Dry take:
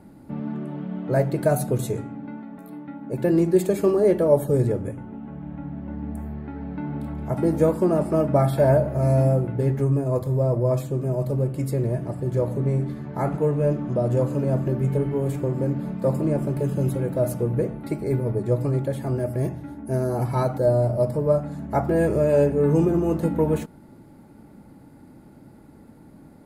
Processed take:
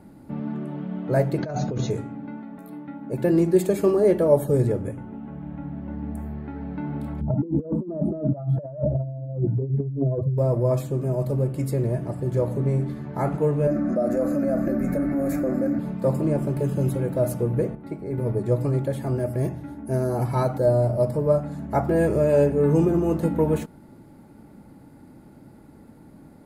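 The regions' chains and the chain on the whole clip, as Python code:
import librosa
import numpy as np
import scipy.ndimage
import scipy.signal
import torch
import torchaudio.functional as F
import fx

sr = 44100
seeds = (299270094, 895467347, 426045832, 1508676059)

y = fx.chain(x, sr, fx.over_compress(threshold_db=-26.0, ratio=-1.0),
    fx.brickwall_lowpass(high_hz=6900.0), at=(1.38, 1.91))
y = fx.chain(y, sr, fx.spec_expand(power=2.0),
    fx.dynamic_eq(hz=300.0, q=1.1, threshold_db=-28.0, ratio=4.0, max_db=3),
    fx.over_compress(threshold_db=-24.0, ratio=-0.5), at=(7.21, 10.38))
y = fx.chain(y, sr, fx.peak_eq(hz=8400.0, db=-10.5, octaves=0.33),
    fx.fixed_phaser(hz=630.0, stages=8),
    fx.env_flatten(amount_pct=70), at=(13.67, 15.79))
y = fx.chain(y, sr, fx.high_shelf(hz=3300.0, db=-10.5),
    fx.comb_fb(f0_hz=92.0, decay_s=0.36, harmonics='all', damping=0.0, mix_pct=60), at=(17.75, 18.18))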